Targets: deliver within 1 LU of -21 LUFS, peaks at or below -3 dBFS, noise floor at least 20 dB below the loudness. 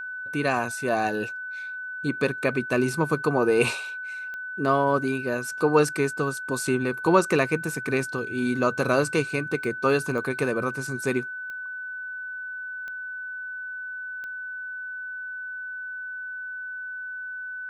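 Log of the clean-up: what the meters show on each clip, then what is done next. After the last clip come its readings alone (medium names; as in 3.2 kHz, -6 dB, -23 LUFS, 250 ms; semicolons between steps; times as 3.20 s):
clicks found 6; steady tone 1.5 kHz; tone level -32 dBFS; loudness -27.0 LUFS; peak level -5.5 dBFS; loudness target -21.0 LUFS
-> de-click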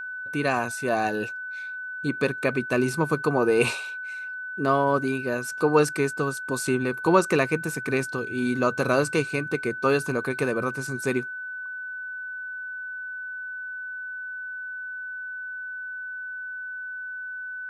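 clicks found 0; steady tone 1.5 kHz; tone level -32 dBFS
-> band-stop 1.5 kHz, Q 30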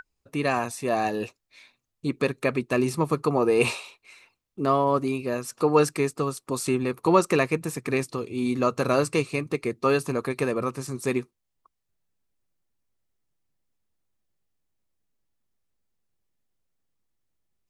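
steady tone not found; loudness -25.5 LUFS; peak level -5.5 dBFS; loudness target -21.0 LUFS
-> trim +4.5 dB; peak limiter -3 dBFS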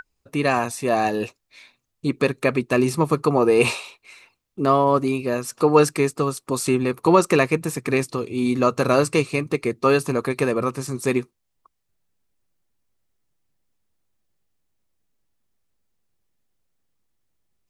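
loudness -21.0 LUFS; peak level -3.0 dBFS; noise floor -75 dBFS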